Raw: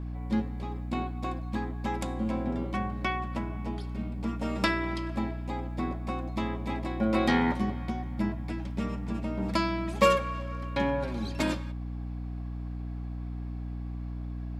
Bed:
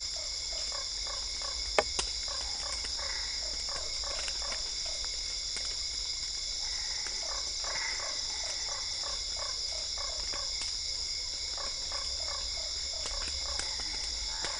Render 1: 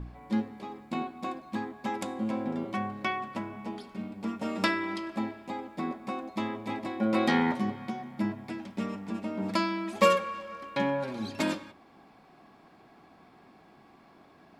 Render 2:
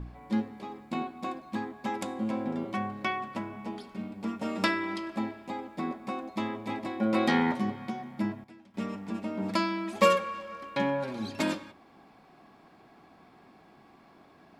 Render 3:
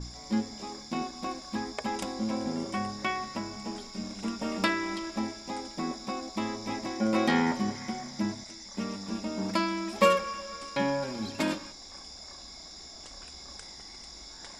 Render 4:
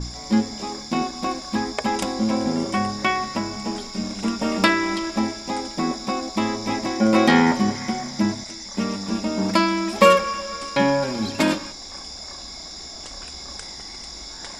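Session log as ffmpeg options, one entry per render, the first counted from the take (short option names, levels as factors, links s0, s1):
-af "bandreject=f=60:t=h:w=4,bandreject=f=120:t=h:w=4,bandreject=f=180:t=h:w=4,bandreject=f=240:t=h:w=4,bandreject=f=300:t=h:w=4,bandreject=f=360:t=h:w=4,bandreject=f=420:t=h:w=4,bandreject=f=480:t=h:w=4,bandreject=f=540:t=h:w=4,bandreject=f=600:t=h:w=4,bandreject=f=660:t=h:w=4"
-filter_complex "[0:a]asplit=3[s0][s1][s2];[s0]atrim=end=8.44,asetpts=PTS-STARTPTS,afade=t=out:st=8:d=0.44:c=log:silence=0.188365[s3];[s1]atrim=start=8.44:end=8.74,asetpts=PTS-STARTPTS,volume=0.188[s4];[s2]atrim=start=8.74,asetpts=PTS-STARTPTS,afade=t=in:d=0.44:c=log:silence=0.188365[s5];[s3][s4][s5]concat=n=3:v=0:a=1"
-filter_complex "[1:a]volume=0.282[s0];[0:a][s0]amix=inputs=2:normalize=0"
-af "volume=2.99,alimiter=limit=0.794:level=0:latency=1"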